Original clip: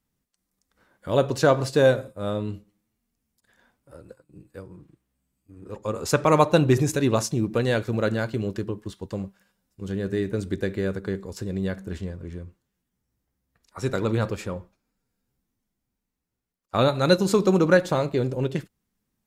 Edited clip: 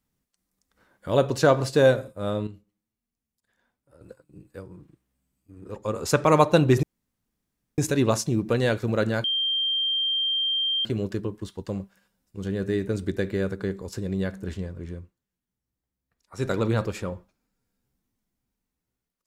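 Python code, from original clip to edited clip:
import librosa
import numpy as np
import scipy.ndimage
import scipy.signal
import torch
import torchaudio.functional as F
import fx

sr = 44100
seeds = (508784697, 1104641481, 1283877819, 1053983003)

y = fx.edit(x, sr, fx.clip_gain(start_s=2.47, length_s=1.54, db=-10.0),
    fx.insert_room_tone(at_s=6.83, length_s=0.95),
    fx.insert_tone(at_s=8.29, length_s=1.61, hz=3170.0, db=-22.0),
    fx.fade_down_up(start_s=12.42, length_s=1.48, db=-8.0, fade_s=0.13), tone=tone)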